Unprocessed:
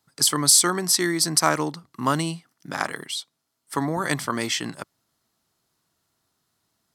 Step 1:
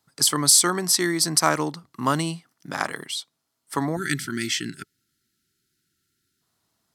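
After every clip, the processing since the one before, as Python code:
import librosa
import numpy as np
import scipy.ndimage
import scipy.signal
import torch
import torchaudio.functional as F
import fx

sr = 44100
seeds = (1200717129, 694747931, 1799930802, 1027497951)

y = fx.spec_box(x, sr, start_s=3.97, length_s=2.44, low_hz=410.0, high_hz=1300.0, gain_db=-27)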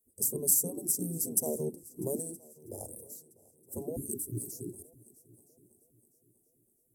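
y = scipy.signal.sosfilt(scipy.signal.cheby2(4, 80, [1400.0, 3200.0], 'bandstop', fs=sr, output='sos'), x)
y = fx.spec_gate(y, sr, threshold_db=-10, keep='weak')
y = fx.echo_heads(y, sr, ms=323, heads='second and third', feedback_pct=40, wet_db=-24)
y = F.gain(torch.from_numpy(y), 5.5).numpy()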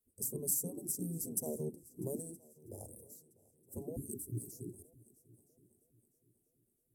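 y = fx.low_shelf(x, sr, hz=250.0, db=8.0)
y = F.gain(torch.from_numpy(y), -8.5).numpy()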